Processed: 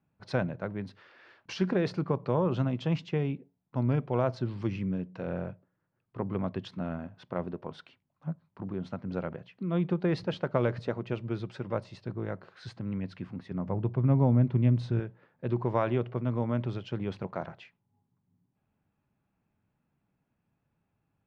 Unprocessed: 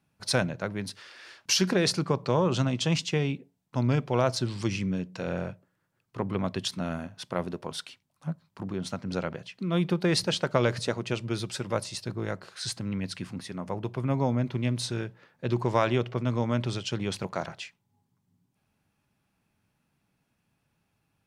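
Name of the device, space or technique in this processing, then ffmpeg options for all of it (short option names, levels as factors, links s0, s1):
phone in a pocket: -filter_complex "[0:a]lowpass=3400,highshelf=f=2100:g=-12,asettb=1/sr,asplit=3[s0][s1][s2];[s0]atrim=end=13.514[s3];[s1]atrim=start=13.51:end=15,asetpts=PTS-STARTPTS,afade=t=in:d=0.004:c=qsin,afade=t=out:st=1.486:d=0.004:c=qsin,lowshelf=f=220:g=10[s4];[s2]atrim=start=14.996[s5];[s3][s4]acrossfade=d=0.004:c1=hsin:c2=qsin[s6];[s6][s5]acrossfade=d=0.004:c1=qsin:c2=hsin,volume=0.794"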